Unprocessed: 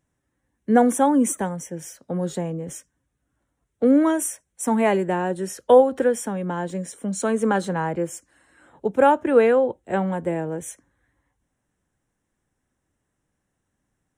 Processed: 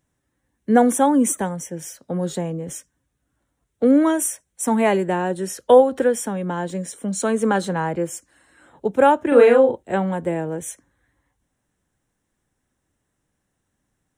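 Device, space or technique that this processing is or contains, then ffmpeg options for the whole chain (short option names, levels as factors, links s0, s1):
presence and air boost: -filter_complex "[0:a]equalizer=f=3900:t=o:w=0.77:g=3,highshelf=f=9100:g=4,asettb=1/sr,asplit=3[s0][s1][s2];[s0]atrim=end=9.284[s3];[s1]atrim=start=9.28:end=9.83,asetpts=PTS-STARTPTS,afade=t=in:d=0.004:c=qsin,afade=t=out:st=0.546:d=0.004:c=qsin,asplit=2[s4][s5];[s5]adelay=38,volume=0.794[s6];[s4][s6]amix=inputs=2:normalize=0,atrim=end_sample=24255[s7];[s2]atrim=start=9.826[s8];[s3][s7]acrossfade=d=0.004:c1=hsin:c2=qsin[s9];[s9][s8]acrossfade=d=0.004:c1=qsin:c2=hsin,volume=1.19"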